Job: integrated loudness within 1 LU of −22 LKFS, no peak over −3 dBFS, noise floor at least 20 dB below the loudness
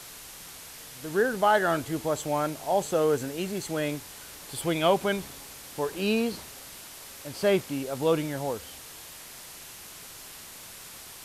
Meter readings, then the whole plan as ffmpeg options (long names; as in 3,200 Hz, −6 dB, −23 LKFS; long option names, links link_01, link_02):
background noise floor −45 dBFS; target noise floor −48 dBFS; integrated loudness −27.5 LKFS; sample peak −10.0 dBFS; target loudness −22.0 LKFS
→ -af "afftdn=noise_reduction=6:noise_floor=-45"
-af "volume=5.5dB"